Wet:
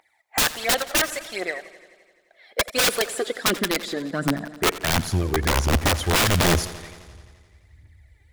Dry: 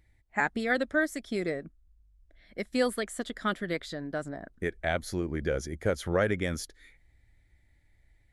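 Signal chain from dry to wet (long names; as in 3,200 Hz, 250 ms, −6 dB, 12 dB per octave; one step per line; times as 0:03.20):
phase shifter 1.4 Hz, delay 2.6 ms, feedback 67%
high-pass filter sweep 790 Hz → 77 Hz, 0:02.27–0:05.47
wrap-around overflow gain 19.5 dB
feedback echo with a swinging delay time 86 ms, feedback 71%, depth 70 cents, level −16.5 dB
level +6 dB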